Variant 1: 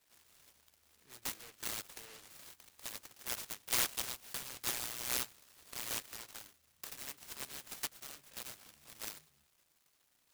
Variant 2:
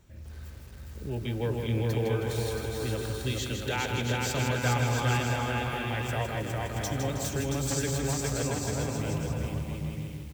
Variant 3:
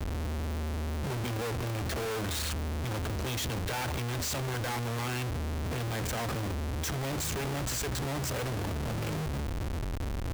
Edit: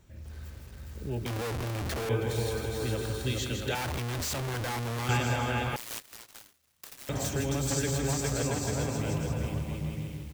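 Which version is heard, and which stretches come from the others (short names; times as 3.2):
2
1.26–2.09 from 3
3.75–5.09 from 3
5.76–7.09 from 1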